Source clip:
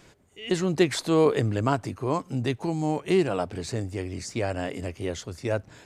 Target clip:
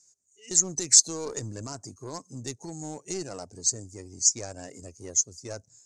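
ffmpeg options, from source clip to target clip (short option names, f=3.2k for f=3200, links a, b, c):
-af "afftdn=nr=18:nf=-36,alimiter=limit=-16dB:level=0:latency=1:release=17,aeval=exprs='0.158*(cos(1*acos(clip(val(0)/0.158,-1,1)))-cos(1*PI/2))+0.02*(cos(2*acos(clip(val(0)/0.158,-1,1)))-cos(2*PI/2))+0.00501*(cos(7*acos(clip(val(0)/0.158,-1,1)))-cos(7*PI/2))+0.000891*(cos(8*acos(clip(val(0)/0.158,-1,1)))-cos(8*PI/2))':c=same,aexciter=amount=14.3:drive=8.4:freq=5k,lowpass=f=6.5k:t=q:w=4,volume=-10.5dB"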